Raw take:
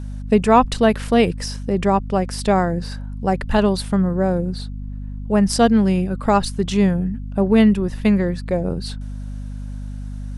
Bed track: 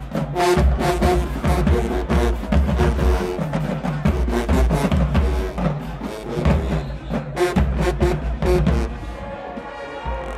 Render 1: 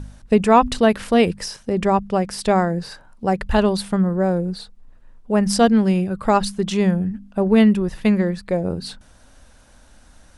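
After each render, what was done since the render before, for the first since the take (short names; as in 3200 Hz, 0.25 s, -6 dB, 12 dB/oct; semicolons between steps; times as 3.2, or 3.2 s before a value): de-hum 50 Hz, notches 5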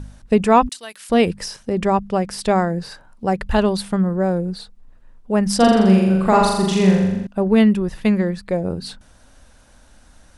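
0.69–1.1 differentiator; 5.56–7.27 flutter echo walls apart 7.2 m, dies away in 1 s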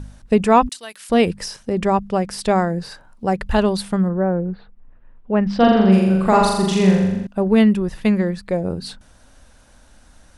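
4.08–5.91 LPF 1800 Hz -> 4200 Hz 24 dB/oct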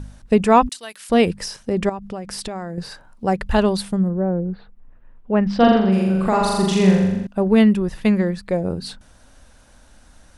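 1.89–2.78 compressor 12:1, threshold -25 dBFS; 3.89–4.51 bell 1700 Hz -13 dB -> -6.5 dB 2.5 oct; 5.77–6.54 compressor 2:1, threshold -16 dBFS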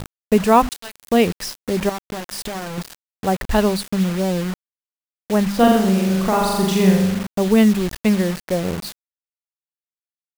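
bit-crush 5-bit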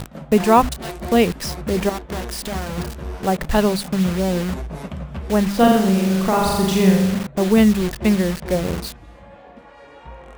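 add bed track -12.5 dB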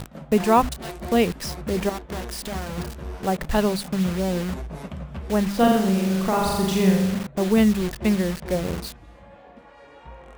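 gain -4 dB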